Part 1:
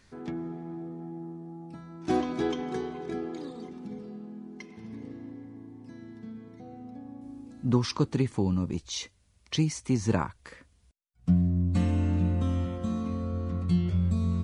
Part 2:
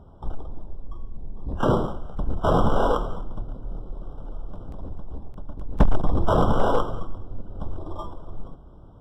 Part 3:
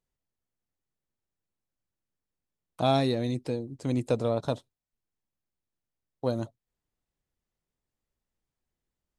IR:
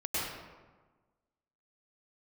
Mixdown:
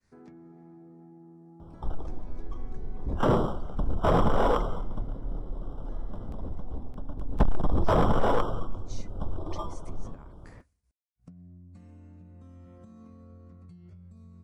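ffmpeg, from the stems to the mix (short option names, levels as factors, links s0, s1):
-filter_complex "[0:a]agate=range=0.0224:threshold=0.00141:ratio=3:detection=peak,equalizer=f=3300:t=o:w=0.56:g=-10,acompressor=threshold=0.0282:ratio=6,volume=0.398[s0];[1:a]asoftclip=type=tanh:threshold=0.211,adelay=1600,volume=0.944[s1];[s0]acompressor=threshold=0.00447:ratio=6,volume=1[s2];[s1][s2]amix=inputs=2:normalize=0"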